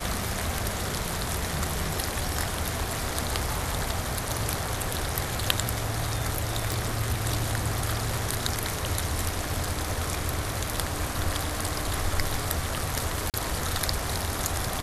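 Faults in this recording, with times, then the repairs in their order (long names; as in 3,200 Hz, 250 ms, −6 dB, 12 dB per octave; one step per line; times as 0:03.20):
0:06.72: click
0:13.30–0:13.34: drop-out 38 ms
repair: click removal
repair the gap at 0:13.30, 38 ms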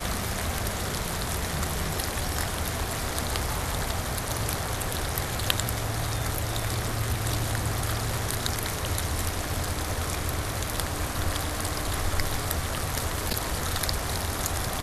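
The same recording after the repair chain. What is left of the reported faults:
none of them is left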